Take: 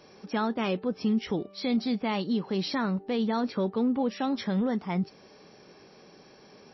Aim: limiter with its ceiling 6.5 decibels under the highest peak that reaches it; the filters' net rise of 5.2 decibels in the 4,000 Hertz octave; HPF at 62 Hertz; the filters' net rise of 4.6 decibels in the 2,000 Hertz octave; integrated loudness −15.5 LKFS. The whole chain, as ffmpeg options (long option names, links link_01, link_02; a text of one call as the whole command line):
ffmpeg -i in.wav -af "highpass=62,equalizer=frequency=2000:width_type=o:gain=4.5,equalizer=frequency=4000:width_type=o:gain=5,volume=15.5dB,alimiter=limit=-6.5dB:level=0:latency=1" out.wav